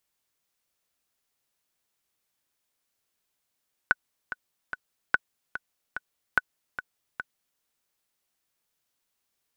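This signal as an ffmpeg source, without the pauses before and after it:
-f lavfi -i "aevalsrc='pow(10,(-6.5-12.5*gte(mod(t,3*60/146),60/146))/20)*sin(2*PI*1490*mod(t,60/146))*exp(-6.91*mod(t,60/146)/0.03)':d=3.69:s=44100"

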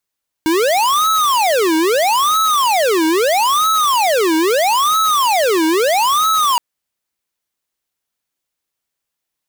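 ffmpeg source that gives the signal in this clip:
-f lavfi -i "aevalsrc='0.2*(2*lt(mod((808*t-492/(2*PI*0.77)*sin(2*PI*0.77*t)),1),0.5)-1)':d=6.12:s=44100"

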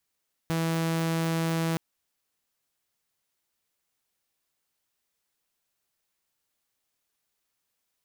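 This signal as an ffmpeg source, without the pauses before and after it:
-f lavfi -i "aevalsrc='0.075*(2*mod(164*t,1)-1)':d=1.27:s=44100"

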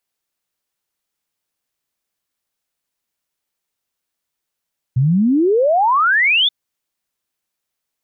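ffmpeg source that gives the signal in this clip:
-f lavfi -i "aevalsrc='0.282*clip(min(t,1.53-t)/0.01,0,1)*sin(2*PI*120*1.53/log(3600/120)*(exp(log(3600/120)*t/1.53)-1))':d=1.53:s=44100"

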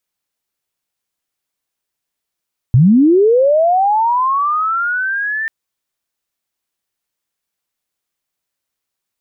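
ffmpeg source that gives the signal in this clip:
-f lavfi -i "aevalsrc='pow(10,(-5-12*t/2.74)/20)*sin(2*PI*(110*t+1690*t*t/(2*2.74)))':d=2.74:s=44100"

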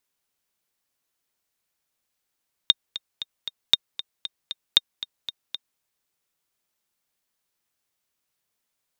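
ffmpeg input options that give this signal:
-f lavfi -i "aevalsrc='pow(10,(-1.5-15.5*gte(mod(t,4*60/232),60/232))/20)*sin(2*PI*3680*mod(t,60/232))*exp(-6.91*mod(t,60/232)/0.03)':d=3.1:s=44100"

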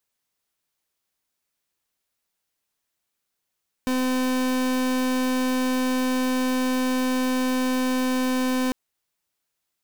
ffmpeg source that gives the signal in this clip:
-f lavfi -i "aevalsrc='0.0708*(2*lt(mod(256*t,1),0.38)-1)':d=4.85:s=44100"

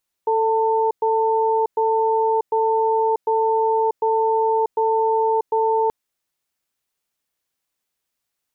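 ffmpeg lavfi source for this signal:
-f lavfi -i "aevalsrc='0.119*(sin(2*PI*443*t)+sin(2*PI*895*t))*clip(min(mod(t,0.75),0.64-mod(t,0.75))/0.005,0,1)':d=5.63:s=44100"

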